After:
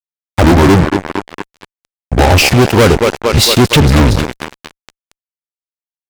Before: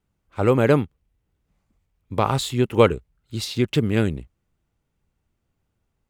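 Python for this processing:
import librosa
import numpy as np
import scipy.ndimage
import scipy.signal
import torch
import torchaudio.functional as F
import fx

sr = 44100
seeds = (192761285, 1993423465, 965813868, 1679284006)

y = fx.pitch_trill(x, sr, semitones=-7.0, every_ms=422)
y = fx.echo_thinned(y, sr, ms=228, feedback_pct=78, hz=220.0, wet_db=-15.5)
y = fx.fuzz(y, sr, gain_db=31.0, gate_db=-36.0)
y = F.gain(torch.from_numpy(y), 8.5).numpy()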